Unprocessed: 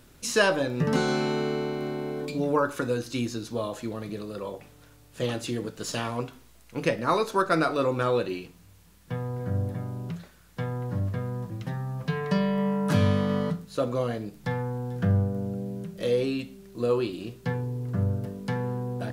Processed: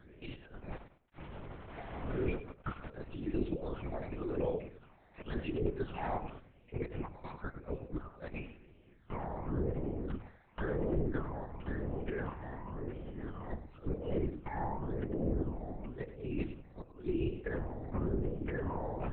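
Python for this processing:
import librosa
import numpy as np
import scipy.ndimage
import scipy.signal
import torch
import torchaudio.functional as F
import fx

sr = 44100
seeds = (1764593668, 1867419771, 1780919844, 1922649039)

y = fx.octave_divider(x, sr, octaves=1, level_db=2.0)
y = scipy.signal.sosfilt(scipy.signal.butter(4, 260.0, 'highpass', fs=sr, output='sos'), y)
y = fx.low_shelf(y, sr, hz=330.0, db=4.5)
y = fx.over_compress(y, sr, threshold_db=-32.0, ratio=-0.5)
y = fx.phaser_stages(y, sr, stages=8, low_hz=370.0, high_hz=1400.0, hz=0.94, feedback_pct=25)
y = fx.sample_gate(y, sr, floor_db=-37.0, at=(0.71, 2.9))
y = fx.air_absorb(y, sr, metres=470.0)
y = fx.echo_feedback(y, sr, ms=103, feedback_pct=26, wet_db=-12.0)
y = fx.lpc_vocoder(y, sr, seeds[0], excitation='whisper', order=8)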